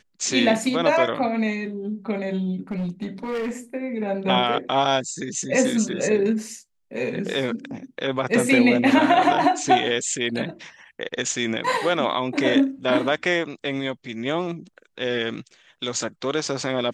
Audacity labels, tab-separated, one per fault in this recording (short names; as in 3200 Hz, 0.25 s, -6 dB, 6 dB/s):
2.710000	3.510000	clipped -23.5 dBFS